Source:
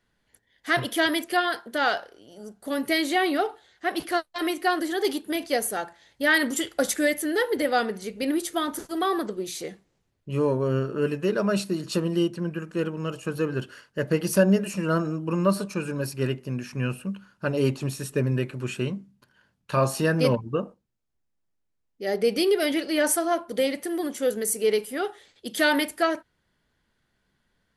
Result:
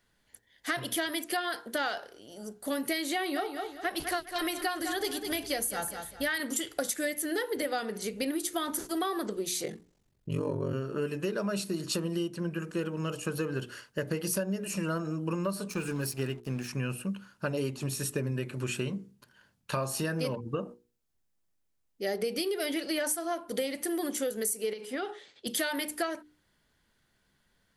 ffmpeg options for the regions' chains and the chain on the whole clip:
-filter_complex "[0:a]asettb=1/sr,asplit=3[a][b][c];[a]atrim=end=3.164[d];[b]atrim=start=3.16:end=6.4,asetpts=PTS-STARTPTS,afade=t=in:d=0.004:c=qsin,afade=t=out:st=3.236:d=0.004:c=qsin,asubboost=boost=11.5:cutoff=110,aecho=1:1:201|402|603:0.282|0.0874|0.0271,atrim=end_sample=142884[e];[c]atrim=start=6.396[f];[d][e]acrossfade=d=0.004:c1=hsin:c2=qsin[g];[g][f]acrossfade=d=0.004:c1=qsin:c2=hsin,asettb=1/sr,asplit=3[h][i][j];[h]atrim=end=9.644[k];[i]atrim=start=9.64:end=10.73,asetpts=PTS-STARTPTS,afade=t=in:d=0.004:c=qsin,afade=t=out:st=1.086:d=0.004:c=qsin,lowshelf=f=350:g=7,bandreject=f=50:t=h:w=6,bandreject=f=100:t=h:w=6,bandreject=f=150:t=h:w=6,bandreject=f=200:t=h:w=6,bandreject=f=250:t=h:w=6,bandreject=f=300:t=h:w=6,aeval=exprs='val(0)*sin(2*PI*23*n/s)':c=same[l];[j]atrim=start=10.726[m];[k][l]acrossfade=d=0.004:c1=hsin:c2=qsin[n];[n][m]acrossfade=d=0.004:c1=qsin:c2=hsin,asettb=1/sr,asplit=3[o][p][q];[o]atrim=end=15.704[r];[p]atrim=start=15.7:end=16.68,asetpts=PTS-STARTPTS,afade=t=in:d=0.004:c=qsin,afade=t=out:st=0.976:d=0.004:c=qsin,aeval=exprs='sgn(val(0))*max(abs(val(0))-0.00447,0)':c=same,bandreject=f=570:w=8.2[s];[q]atrim=start=16.676[t];[r][s]acrossfade=d=0.004:c1=hsin:c2=qsin[u];[u][t]acrossfade=d=0.004:c1=qsin:c2=hsin,asettb=1/sr,asplit=3[v][w][x];[v]atrim=end=24.734[y];[w]atrim=start=24.73:end=25.47,asetpts=PTS-STARTPTS,afade=t=in:d=0.004:c=qsin,afade=t=out:st=0.736:d=0.004:c=qsin,highpass=140,lowpass=5k,acompressor=threshold=-28dB:ratio=10:attack=3.2:release=140:knee=1:detection=peak[z];[x]atrim=start=25.466[aa];[y][z]acrossfade=d=0.004:c1=hsin:c2=qsin[ab];[ab][aa]acrossfade=d=0.004:c1=qsin:c2=hsin,highshelf=f=5k:g=7,bandreject=f=60:t=h:w=6,bandreject=f=120:t=h:w=6,bandreject=f=180:t=h:w=6,bandreject=f=240:t=h:w=6,bandreject=f=300:t=h:w=6,bandreject=f=360:t=h:w=6,bandreject=f=420:t=h:w=6,bandreject=f=480:t=h:w=6,acompressor=threshold=-28dB:ratio=10"

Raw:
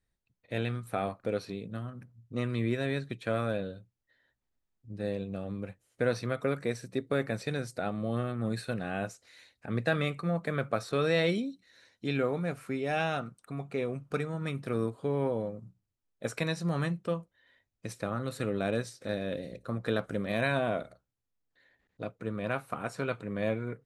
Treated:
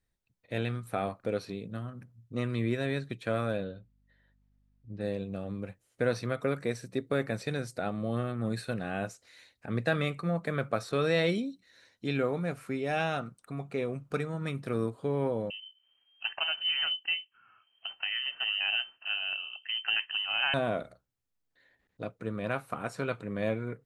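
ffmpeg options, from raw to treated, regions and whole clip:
-filter_complex "[0:a]asettb=1/sr,asplit=3[a][b][c];[a]atrim=end=3.644[d];[b]atrim=start=3.64:end=5.01,asetpts=PTS-STARTPTS,afade=t=in:d=0.004:c=qsin,afade=t=out:st=1.366:d=0.004:c=qsin,lowpass=4.1k,aeval=exprs='val(0)+0.000398*(sin(2*PI*50*n/s)+sin(2*PI*2*50*n/s)/2+sin(2*PI*3*50*n/s)/3+sin(2*PI*4*50*n/s)/4+sin(2*PI*5*50*n/s)/5)':c=same[e];[c]atrim=start=5.006[f];[d][e]acrossfade=d=0.004:c1=hsin:c2=qsin[g];[g][f]acrossfade=d=0.004:c1=qsin:c2=hsin,asettb=1/sr,asplit=3[h][i][j];[h]atrim=end=15.504[k];[i]atrim=start=15.5:end=20.54,asetpts=PTS-STARTPTS,afade=t=in:d=0.004:c=qsin,afade=t=out:st=5.036:d=0.004:c=qsin,acompressor=mode=upward:threshold=-53dB:ratio=2.5:attack=3.2:release=140:knee=2.83:detection=peak,bandreject=f=1.1k:w=14,lowpass=f=2.7k:t=q:w=0.5098,lowpass=f=2.7k:t=q:w=0.6013,lowpass=f=2.7k:t=q:w=0.9,lowpass=f=2.7k:t=q:w=2.563,afreqshift=-3200[l];[j]atrim=start=20.536[m];[k][l]acrossfade=d=0.004:c1=hsin:c2=qsin[n];[n][m]acrossfade=d=0.004:c1=qsin:c2=hsin"

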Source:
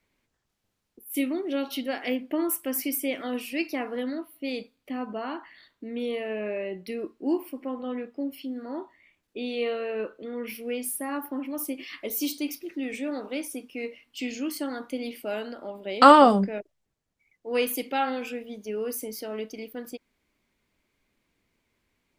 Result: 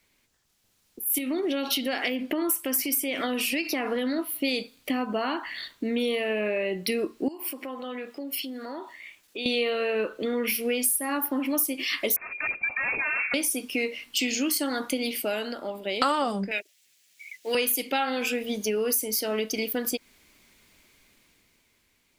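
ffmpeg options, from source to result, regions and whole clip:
-filter_complex "[0:a]asettb=1/sr,asplit=3[a][b][c];[a]atrim=end=1.184[d];[b]atrim=start=1.18:end=4.19,asetpts=PTS-STARTPTS,afade=t=in:d=0.004:c=qsin,afade=t=out:st=3.006:d=0.004:c=qsin,highshelf=f=6k:g=-6,acompressor=threshold=-30dB:ratio=6:attack=3.2:release=140:knee=1:detection=peak[e];[c]atrim=start=4.186[f];[d][e]acrossfade=d=0.004:c1=hsin:c2=qsin[g];[g][f]acrossfade=d=0.004:c1=qsin:c2=hsin,asettb=1/sr,asplit=3[h][i][j];[h]atrim=end=7.284[k];[i]atrim=start=7.28:end=9.46,asetpts=PTS-STARTPTS,afade=t=in:d=0.004:c=qsin,afade=t=out:st=2.176:d=0.004:c=qsin,lowshelf=f=320:g=-11.5,acompressor=threshold=-47dB:ratio=3:attack=3.2:release=140:knee=1:detection=peak[l];[j]atrim=start=9.456[m];[k][l]acrossfade=d=0.004:c1=hsin:c2=qsin[n];[n][m]acrossfade=d=0.004:c1=qsin:c2=hsin,asettb=1/sr,asplit=3[o][p][q];[o]atrim=end=12.164[r];[p]atrim=start=12.16:end=13.34,asetpts=PTS-STARTPTS,afade=t=in:d=0.004:c=qsin,afade=t=out:st=1.176:d=0.004:c=qsin,aeval=exprs='0.02*(abs(mod(val(0)/0.02+3,4)-2)-1)':c=same,lowpass=f=2.3k:t=q:w=0.5098,lowpass=f=2.3k:t=q:w=0.6013,lowpass=f=2.3k:t=q:w=0.9,lowpass=f=2.3k:t=q:w=2.563,afreqshift=-2700[s];[q]atrim=start=13.336[t];[r][s]acrossfade=d=0.004:c1=hsin:c2=qsin[u];[u][t]acrossfade=d=0.004:c1=qsin:c2=hsin,asettb=1/sr,asplit=3[v][w][x];[v]atrim=end=16.514[y];[w]atrim=start=16.51:end=17.55,asetpts=PTS-STARTPTS,afade=t=in:d=0.004:c=qsin,afade=t=out:st=1.036:d=0.004:c=qsin,highpass=f=510:p=1,highshelf=f=1.6k:t=q:w=1.5:g=11.5[z];[x]atrim=start=17.546[aa];[y][z]acrossfade=d=0.004:c1=hsin:c2=qsin[ab];[ab][aa]acrossfade=d=0.004:c1=qsin:c2=hsin,dynaudnorm=f=100:g=21:m=9dB,highshelf=f=2.4k:g=11,acompressor=threshold=-27dB:ratio=4,volume=2dB"

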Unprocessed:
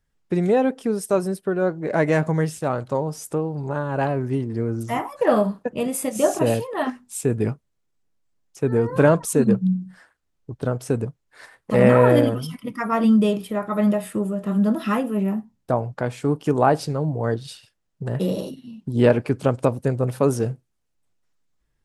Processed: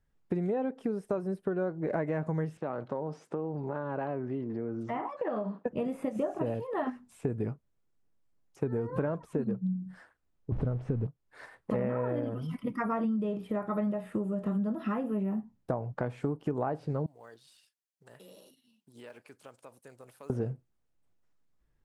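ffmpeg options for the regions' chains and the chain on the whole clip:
-filter_complex "[0:a]asettb=1/sr,asplit=3[a][b][c];[a]atrim=end=2.574[d];[b]atrim=start=2.57:end=5.66,asetpts=PTS-STARTPTS,afade=t=in:d=0.004:c=qsin,afade=t=out:st=3.086:d=0.004:c=qsin,acompressor=threshold=-27dB:ratio=4:attack=3.2:release=140:knee=1:detection=peak,highpass=190,lowpass=3.5k[e];[c]atrim=start=5.656[f];[d][e]acrossfade=d=0.004:c1=hsin:c2=qsin[g];[g][f]acrossfade=d=0.004:c1=qsin:c2=hsin,asettb=1/sr,asplit=3[h][i][j];[h]atrim=end=10.524[k];[i]atrim=start=10.52:end=11.07,asetpts=PTS-STARTPTS,afade=t=in:d=0.004:c=qsin,afade=t=out:st=0.546:d=0.004:c=qsin,aeval=exprs='val(0)+0.5*0.0282*sgn(val(0))':c=same,lowpass=f=3.3k:p=1,aemphasis=mode=reproduction:type=bsi[l];[j]atrim=start=11.066[m];[k][l]acrossfade=d=0.004:c1=hsin:c2=qsin[n];[n][m]acrossfade=d=0.004:c1=qsin:c2=hsin,asettb=1/sr,asplit=3[o][p][q];[o]atrim=end=17.064[r];[p]atrim=start=17.06:end=20.3,asetpts=PTS-STARTPTS,afade=t=in:d=0.004:c=qsin,afade=t=out:st=3.236:d=0.004:c=qsin,aderivative,acompressor=threshold=-44dB:ratio=2.5:attack=3.2:release=140:knee=1:detection=peak,acrusher=bits=5:mode=log:mix=0:aa=0.000001[s];[q]atrim=start=20.296[t];[r][s]acrossfade=d=0.004:c1=hsin:c2=qsin[u];[u][t]acrossfade=d=0.004:c1=qsin:c2=hsin,acrossover=split=2800[v][w];[w]acompressor=threshold=-50dB:ratio=4:attack=1:release=60[x];[v][x]amix=inputs=2:normalize=0,highshelf=f=2.3k:g=-9.5,acompressor=threshold=-27dB:ratio=10,volume=-1dB"

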